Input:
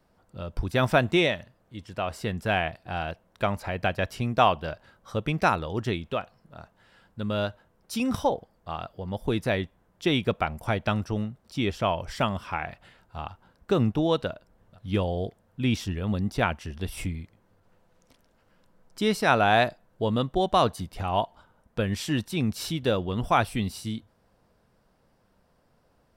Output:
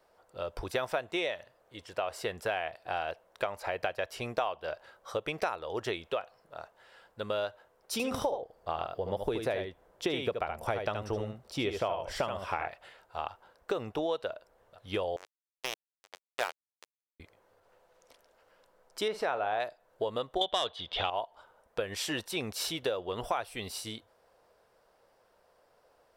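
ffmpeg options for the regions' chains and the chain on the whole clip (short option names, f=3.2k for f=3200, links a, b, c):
-filter_complex "[0:a]asettb=1/sr,asplit=3[a][b][c];[a]atrim=end=7.924[d];[b]atrim=start=7.92:end=12.68,asetpts=PTS-STARTPTS,afade=t=in:d=0.004:c=qsin,afade=t=out:st=4.756:d=0.004:c=qsin,lowshelf=f=440:g=8.5,aecho=1:1:74:0.473,atrim=end_sample=209916[e];[c]atrim=start=12.676[f];[d][e]acrossfade=d=0.004:c1=hsin:c2=qsin[g];[g][f]acrossfade=d=0.004:c1=qsin:c2=hsin,asettb=1/sr,asplit=3[h][i][j];[h]atrim=end=15.164[k];[i]atrim=start=15.16:end=17.2,asetpts=PTS-STARTPTS,afade=t=in:d=0.004:c=qsin,afade=t=out:st=2.036:d=0.004:c=qsin,aeval=exprs='sgn(val(0))*max(abs(val(0))-0.0119,0)':c=same,highpass=440,acrusher=bits=3:mix=0:aa=0.5[l];[j]atrim=start=17.196[m];[k][l]acrossfade=d=0.004:c1=hsin:c2=qsin[n];[n][m]acrossfade=d=0.004:c1=qsin:c2=hsin,asettb=1/sr,asplit=3[o][p][q];[o]atrim=end=19.084[r];[p]atrim=start=19.08:end=19.6,asetpts=PTS-STARTPTS,afade=t=in:d=0.004:c=qsin,afade=t=out:st=0.516:d=0.004:c=qsin,lowpass=f=1.6k:p=1,acompressor=mode=upward:threshold=-26dB:ratio=2.5:attack=3.2:release=140:knee=2.83:detection=peak,asplit=2[s][t];[t]adelay=48,volume=-12.5dB[u];[s][u]amix=inputs=2:normalize=0,atrim=end_sample=22932[v];[q]atrim=start=19.596[w];[r][v]acrossfade=d=0.004:c1=hsin:c2=qsin[x];[x][w]acrossfade=d=0.004:c1=qsin:c2=hsin,asettb=1/sr,asplit=3[y][z][aa];[y]atrim=end=20.414[ab];[z]atrim=start=20.41:end=21.1,asetpts=PTS-STARTPTS,afade=t=in:d=0.004:c=qsin,afade=t=out:st=0.686:d=0.004:c=qsin,lowpass=f=3.4k:t=q:w=12,aeval=exprs='0.708*sin(PI/2*1.41*val(0)/0.708)':c=same[ac];[aa]atrim=start=21.096[ad];[ab][ac]acrossfade=d=0.004:c1=hsin:c2=qsin[ae];[ae][ad]acrossfade=d=0.004:c1=qsin:c2=hsin,lowshelf=f=320:t=q:w=1.5:g=-13,acompressor=threshold=-30dB:ratio=6,volume=1dB"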